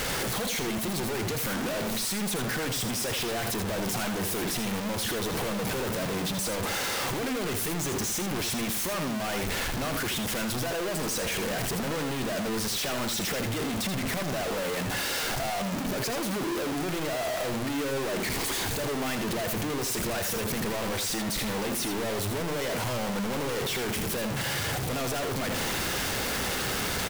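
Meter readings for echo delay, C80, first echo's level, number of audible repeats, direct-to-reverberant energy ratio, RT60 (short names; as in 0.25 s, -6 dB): 81 ms, none, -7.5 dB, 1, none, none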